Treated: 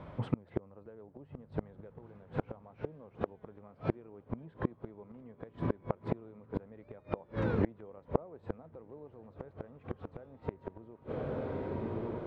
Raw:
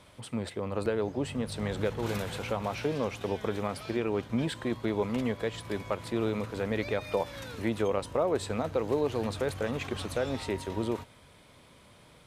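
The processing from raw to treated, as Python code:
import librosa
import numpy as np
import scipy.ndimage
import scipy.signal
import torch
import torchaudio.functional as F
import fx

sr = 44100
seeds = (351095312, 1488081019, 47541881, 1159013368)

y = scipy.signal.sosfilt(scipy.signal.butter(2, 1200.0, 'lowpass', fs=sr, output='sos'), x)
y = fx.peak_eq(y, sr, hz=160.0, db=6.5, octaves=0.33)
y = fx.echo_diffused(y, sr, ms=1181, feedback_pct=42, wet_db=-15)
y = fx.gate_flip(y, sr, shuts_db=-25.0, range_db=-31)
y = F.gain(torch.from_numpy(y), 9.0).numpy()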